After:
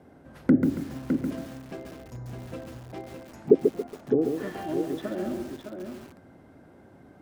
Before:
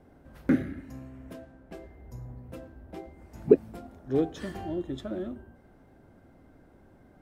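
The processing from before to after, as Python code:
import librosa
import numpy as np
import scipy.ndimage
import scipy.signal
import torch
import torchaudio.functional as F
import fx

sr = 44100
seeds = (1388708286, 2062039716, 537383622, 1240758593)

y = fx.env_lowpass_down(x, sr, base_hz=490.0, full_db=-25.0)
y = scipy.signal.sosfilt(scipy.signal.butter(2, 98.0, 'highpass', fs=sr, output='sos'), y)
y = fx.low_shelf(y, sr, hz=200.0, db=-10.5, at=(2.77, 5.21), fade=0.02)
y = y + 10.0 ** (-6.5 / 20.0) * np.pad(y, (int(609 * sr / 1000.0), 0))[:len(y)]
y = fx.echo_crushed(y, sr, ms=139, feedback_pct=35, bits=8, wet_db=-5.5)
y = y * librosa.db_to_amplitude(4.5)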